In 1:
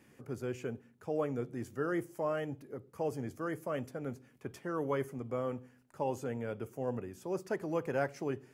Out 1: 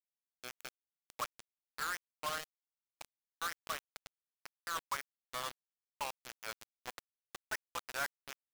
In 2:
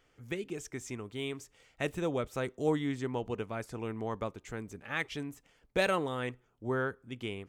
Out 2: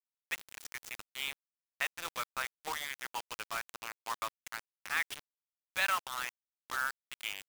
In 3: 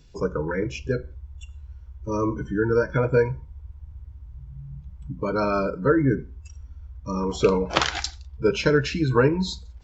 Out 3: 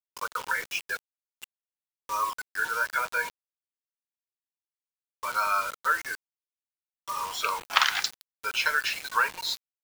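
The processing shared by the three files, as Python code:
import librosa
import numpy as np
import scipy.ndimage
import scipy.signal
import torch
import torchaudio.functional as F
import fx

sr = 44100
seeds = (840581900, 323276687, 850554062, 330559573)

p1 = scipy.signal.sosfilt(scipy.signal.butter(4, 1000.0, 'highpass', fs=sr, output='sos'), x)
p2 = fx.high_shelf(p1, sr, hz=6600.0, db=-10.5)
p3 = fx.rider(p2, sr, range_db=4, speed_s=0.5)
p4 = p2 + (p3 * librosa.db_to_amplitude(-1.0))
p5 = fx.quant_dither(p4, sr, seeds[0], bits=6, dither='none')
y = p5 * librosa.db_to_amplitude(-1.0)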